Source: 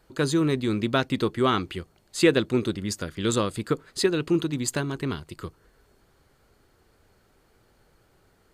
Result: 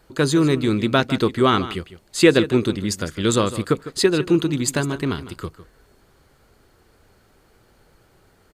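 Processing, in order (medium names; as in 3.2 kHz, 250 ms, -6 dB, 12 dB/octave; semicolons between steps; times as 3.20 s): delay 154 ms -14.5 dB; trim +5.5 dB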